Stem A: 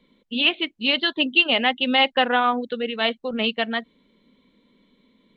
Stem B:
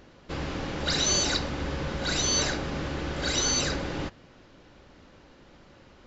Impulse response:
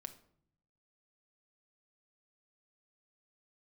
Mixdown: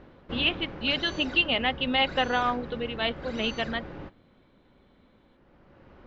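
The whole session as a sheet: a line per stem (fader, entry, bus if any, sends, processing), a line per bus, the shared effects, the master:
-6.0 dB, 0.00 s, no send, dry
+2.0 dB, 0.00 s, send -17 dB, Bessel low-pass 1700 Hz, order 2; auto duck -12 dB, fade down 0.85 s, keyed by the first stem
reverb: on, RT60 0.65 s, pre-delay 5 ms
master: dry

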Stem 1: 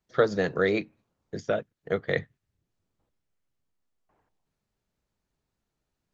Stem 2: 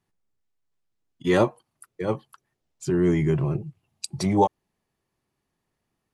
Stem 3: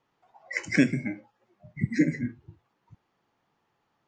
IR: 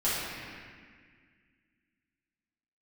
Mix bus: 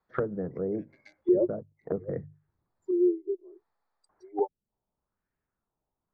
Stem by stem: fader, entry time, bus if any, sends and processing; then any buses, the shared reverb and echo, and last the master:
-3.5 dB, 0.00 s, no send, notches 50/100/150 Hz; LFO low-pass sine 0.98 Hz 870–1800 Hz
+1.5 dB, 0.00 s, no send, steep high-pass 330 Hz 48 dB/oct; spectral expander 2.5:1
-8.0 dB, 0.00 s, no send, Wiener smoothing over 15 samples; HPF 490 Hz 24 dB/oct; bell 5300 Hz +15 dB 2.1 oct; auto duck -19 dB, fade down 1.65 s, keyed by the first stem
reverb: off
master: vocal rider 2 s; treble ducked by the level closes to 350 Hz, closed at -26.5 dBFS

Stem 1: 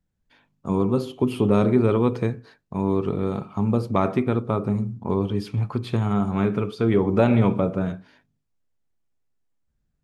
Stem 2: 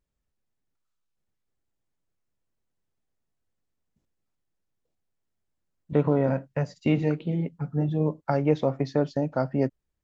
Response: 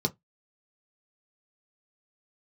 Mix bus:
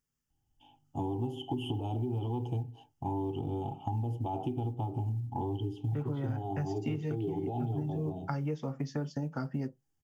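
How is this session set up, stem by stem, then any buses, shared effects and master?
-1.5 dB, 0.30 s, send -13.5 dB, EQ curve 110 Hz 0 dB, 200 Hz -16 dB, 320 Hz +5 dB, 520 Hz -10 dB, 800 Hz +15 dB, 1200 Hz -24 dB, 2000 Hz -29 dB, 3000 Hz +10 dB, 4400 Hz -20 dB, 6700 Hz -6 dB; limiter -16 dBFS, peak gain reduction 11 dB; auto duck -14 dB, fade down 0.40 s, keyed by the second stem
-2.0 dB, 0.00 s, send -12 dB, tilt +2 dB/oct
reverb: on, RT60 0.15 s, pre-delay 3 ms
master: short-mantissa float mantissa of 6-bit; compressor 6:1, threshold -31 dBFS, peak gain reduction 13 dB

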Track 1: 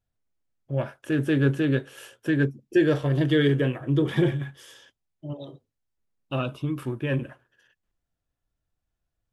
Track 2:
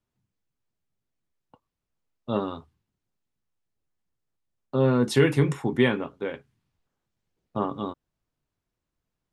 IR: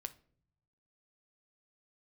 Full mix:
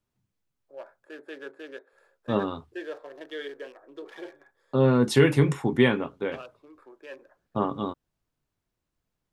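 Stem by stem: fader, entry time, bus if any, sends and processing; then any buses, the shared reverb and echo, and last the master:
-10.5 dB, 0.00 s, no send, Wiener smoothing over 15 samples; HPF 430 Hz 24 dB/oct
+1.0 dB, 0.00 s, muted 1.06–1.93, no send, dry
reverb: off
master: dry

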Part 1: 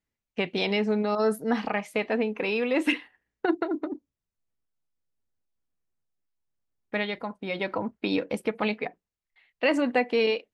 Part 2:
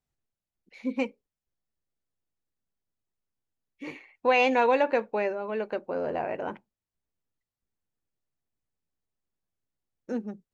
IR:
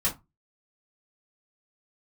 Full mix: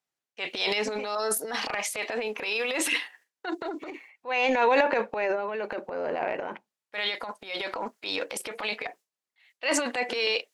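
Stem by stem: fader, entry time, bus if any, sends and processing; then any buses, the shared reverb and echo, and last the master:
-0.5 dB, 0.00 s, no send, gate with hold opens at -52 dBFS; tone controls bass -13 dB, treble +13 dB
+3.0 dB, 0.00 s, no send, auto duck -13 dB, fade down 0.65 s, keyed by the first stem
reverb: off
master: weighting filter A; transient shaper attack -8 dB, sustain +10 dB

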